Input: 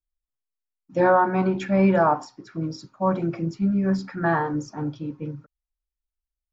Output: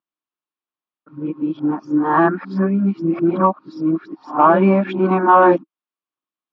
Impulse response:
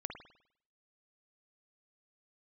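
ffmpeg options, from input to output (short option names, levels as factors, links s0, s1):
-af "areverse,acontrast=42,highpass=f=180:w=0.5412,highpass=f=180:w=1.3066,equalizer=f=320:t=q:w=4:g=8,equalizer=f=490:t=q:w=4:g=-4,equalizer=f=1100:t=q:w=4:g=8,equalizer=f=2000:t=q:w=4:g=-5,lowpass=f=3500:w=0.5412,lowpass=f=3500:w=1.3066"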